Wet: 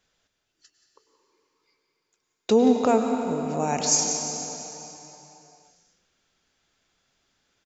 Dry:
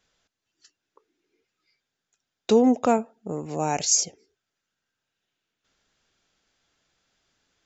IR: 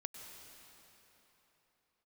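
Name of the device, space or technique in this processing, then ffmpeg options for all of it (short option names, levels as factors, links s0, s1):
cave: -filter_complex "[0:a]aecho=1:1:178:0.188[s0];[1:a]atrim=start_sample=2205[s1];[s0][s1]afir=irnorm=-1:irlink=0,volume=1.5"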